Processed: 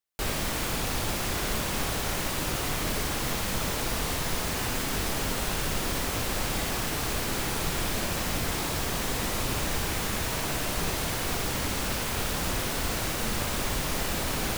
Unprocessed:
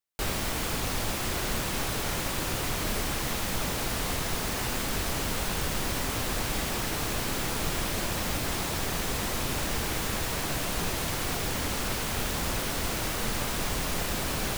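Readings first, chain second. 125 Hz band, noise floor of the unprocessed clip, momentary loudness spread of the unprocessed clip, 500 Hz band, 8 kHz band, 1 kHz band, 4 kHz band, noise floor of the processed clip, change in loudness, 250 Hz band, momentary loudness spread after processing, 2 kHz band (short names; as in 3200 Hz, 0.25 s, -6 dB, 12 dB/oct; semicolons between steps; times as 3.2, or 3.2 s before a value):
+1.0 dB, -31 dBFS, 0 LU, +1.0 dB, +1.0 dB, +1.0 dB, +1.0 dB, -31 dBFS, +1.0 dB, +1.0 dB, 0 LU, +1.0 dB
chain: flutter echo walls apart 10.3 m, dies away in 0.47 s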